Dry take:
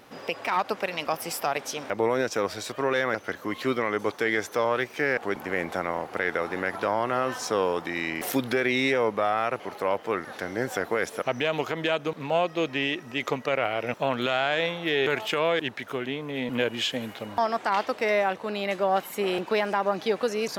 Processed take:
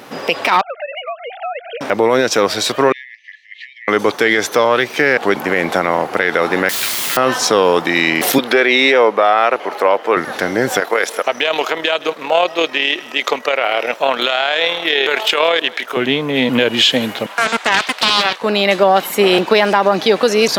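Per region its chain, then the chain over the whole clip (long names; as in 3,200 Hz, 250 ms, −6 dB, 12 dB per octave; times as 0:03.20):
0:00.61–0:01.81: three sine waves on the formant tracks + downward compressor 3 to 1, threshold −40 dBFS
0:02.92–0:03.88: downward compressor 4 to 1, threshold −29 dBFS + linear-phase brick-wall high-pass 1,700 Hz + head-to-tape spacing loss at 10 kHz 40 dB
0:06.69–0:07.17: inverse Chebyshev high-pass filter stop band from 330 Hz, stop band 80 dB + bit-depth reduction 6 bits, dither triangular
0:08.38–0:10.17: high-pass filter 360 Hz + high-shelf EQ 4,100 Hz −9 dB + one half of a high-frequency compander encoder only
0:10.80–0:15.97: high-pass filter 450 Hz + amplitude modulation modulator 38 Hz, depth 30% + single-tap delay 171 ms −22.5 dB
0:17.26–0:18.42: high-pass filter 1,100 Hz + highs frequency-modulated by the lows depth 0.62 ms
whole clip: high-pass filter 130 Hz; dynamic equaliser 3,800 Hz, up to +6 dB, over −44 dBFS, Q 1.6; boost into a limiter +16 dB; level −1 dB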